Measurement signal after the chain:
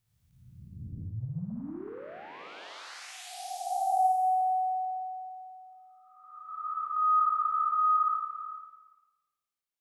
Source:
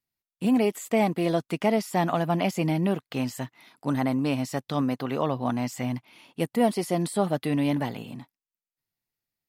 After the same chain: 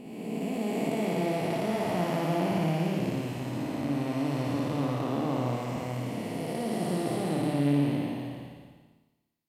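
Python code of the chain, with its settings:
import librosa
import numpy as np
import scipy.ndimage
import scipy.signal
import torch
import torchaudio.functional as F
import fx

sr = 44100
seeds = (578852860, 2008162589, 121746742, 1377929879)

y = fx.spec_blur(x, sr, span_ms=855.0)
y = fx.hum_notches(y, sr, base_hz=50, count=5)
y = fx.room_flutter(y, sr, wall_m=9.6, rt60_s=0.96)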